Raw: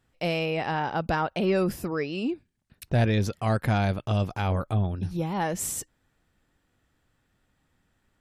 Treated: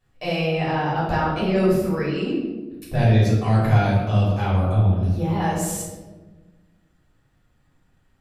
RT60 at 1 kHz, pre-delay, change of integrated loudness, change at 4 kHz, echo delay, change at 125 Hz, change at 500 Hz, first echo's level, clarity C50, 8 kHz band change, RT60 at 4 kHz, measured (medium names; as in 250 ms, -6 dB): 1.0 s, 3 ms, +6.0 dB, +3.5 dB, no echo, +8.0 dB, +5.0 dB, no echo, 1.5 dB, +1.5 dB, 0.70 s